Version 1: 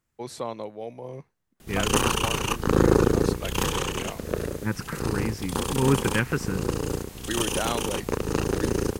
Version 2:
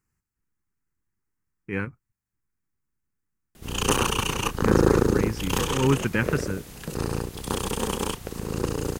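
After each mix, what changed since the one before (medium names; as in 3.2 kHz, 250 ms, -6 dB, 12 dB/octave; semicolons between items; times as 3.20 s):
first voice: muted; background: entry +1.95 s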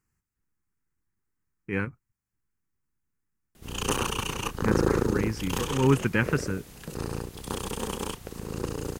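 background -5.0 dB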